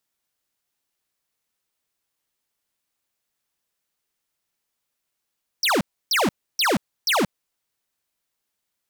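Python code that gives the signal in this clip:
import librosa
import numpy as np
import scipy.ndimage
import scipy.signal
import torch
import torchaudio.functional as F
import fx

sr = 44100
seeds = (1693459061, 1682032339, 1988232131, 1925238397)

y = fx.laser_zaps(sr, level_db=-19.5, start_hz=6000.0, end_hz=160.0, length_s=0.18, wave='square', shots=4, gap_s=0.3)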